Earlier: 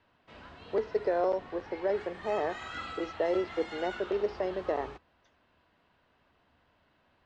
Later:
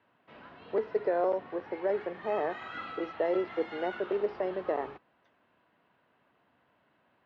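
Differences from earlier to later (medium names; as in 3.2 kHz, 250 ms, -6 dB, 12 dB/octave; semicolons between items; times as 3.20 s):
background: add peaking EQ 77 Hz -9 dB 0.26 oct; master: add band-pass 120–2800 Hz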